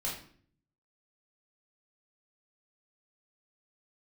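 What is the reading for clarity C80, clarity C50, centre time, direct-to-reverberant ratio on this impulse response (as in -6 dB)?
9.5 dB, 5.0 dB, 35 ms, -6.0 dB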